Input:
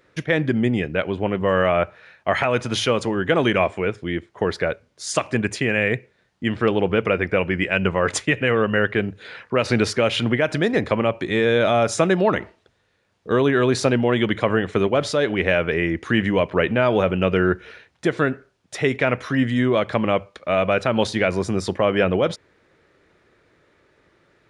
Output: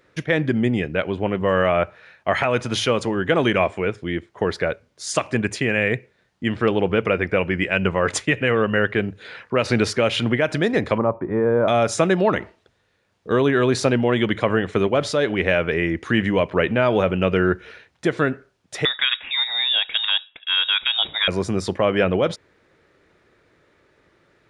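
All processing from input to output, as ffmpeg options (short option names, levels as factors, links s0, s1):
-filter_complex "[0:a]asettb=1/sr,asplit=3[s0][s1][s2];[s0]atrim=end=10.984[s3];[s1]atrim=start=10.98:end=11.68,asetpts=PTS-STARTPTS,afade=t=in:d=0.004:c=qsin,afade=t=out:st=0.696:d=0.004:c=qsin,lowpass=f=1300:w=0.5412,lowpass=f=1300:w=1.3066,equalizer=f=980:t=o:w=0.27:g=7.5[s4];[s2]atrim=start=11.676[s5];[s3][s4]acrossfade=d=0.004:c1=hsin:c2=qsin[s6];[s6][s5]acrossfade=d=0.004:c1=qsin:c2=hsin,asettb=1/sr,asplit=3[s7][s8][s9];[s7]atrim=end=18.854[s10];[s8]atrim=start=18.85:end=21.28,asetpts=PTS-STARTPTS,afade=t=in:d=0.004:c=qsin,afade=t=out:st=2.426:d=0.004:c=qsin,lowshelf=f=250:g=-7,lowpass=f=3300:t=q:w=0.5098,lowpass=f=3300:t=q:w=0.6013,lowpass=f=3300:t=q:w=0.9,lowpass=f=3300:t=q:w=2.563,afreqshift=-3900[s11];[s9]atrim=start=21.276[s12];[s10][s11]acrossfade=d=0.004:c1=hsin:c2=qsin[s13];[s13][s12]acrossfade=d=0.004:c1=qsin:c2=hsin"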